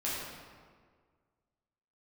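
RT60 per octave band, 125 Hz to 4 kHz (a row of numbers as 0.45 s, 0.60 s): 1.9 s, 1.8 s, 1.8 s, 1.7 s, 1.4 s, 1.1 s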